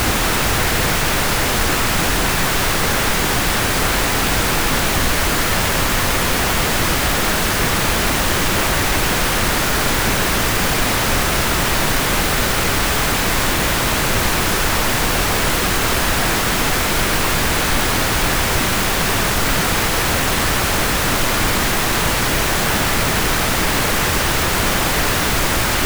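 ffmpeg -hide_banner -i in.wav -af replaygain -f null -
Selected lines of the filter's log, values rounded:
track_gain = +2.0 dB
track_peak = 0.469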